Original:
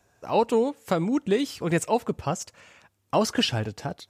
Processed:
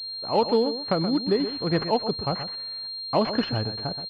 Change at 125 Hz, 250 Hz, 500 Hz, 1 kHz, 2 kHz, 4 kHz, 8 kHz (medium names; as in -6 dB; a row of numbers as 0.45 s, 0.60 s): +0.5 dB, +0.5 dB, +0.5 dB, 0.0 dB, -3.0 dB, +4.5 dB, under -25 dB